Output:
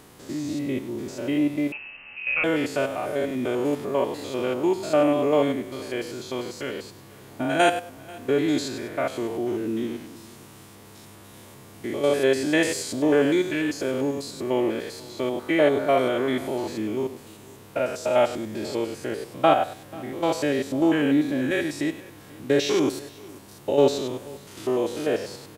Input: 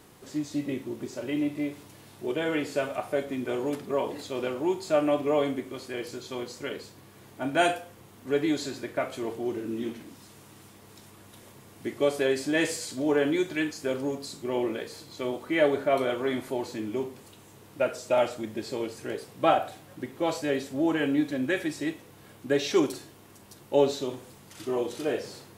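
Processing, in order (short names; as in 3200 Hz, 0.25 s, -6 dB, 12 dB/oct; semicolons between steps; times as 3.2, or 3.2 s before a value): stepped spectrum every 0.1 s; echo 0.487 s -22.5 dB; 1.72–2.44 inverted band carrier 2900 Hz; gain +6 dB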